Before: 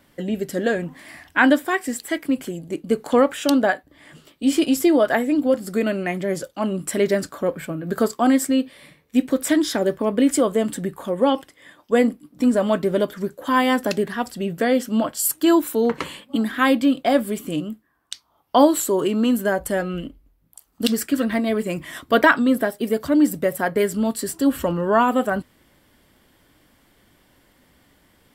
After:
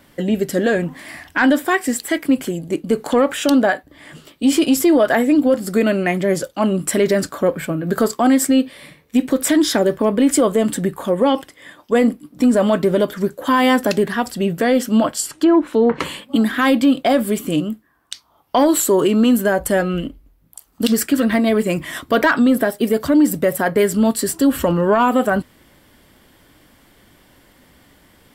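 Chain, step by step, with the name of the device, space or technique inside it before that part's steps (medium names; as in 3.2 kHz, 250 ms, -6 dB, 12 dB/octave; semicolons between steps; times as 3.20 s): 15.11–16.00 s: low-pass that closes with the level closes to 1.3 kHz, closed at -13 dBFS; soft clipper into limiter (saturation -6 dBFS, distortion -24 dB; peak limiter -13.5 dBFS, peak gain reduction 6.5 dB); trim +6.5 dB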